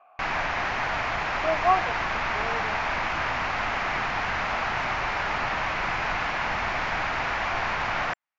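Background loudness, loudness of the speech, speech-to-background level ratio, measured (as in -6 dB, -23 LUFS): -27.0 LUFS, -28.5 LUFS, -1.5 dB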